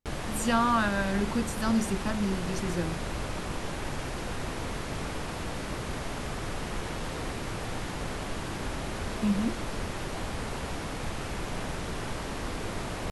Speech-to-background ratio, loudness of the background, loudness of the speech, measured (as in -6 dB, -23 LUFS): 6.0 dB, -35.5 LUFS, -29.5 LUFS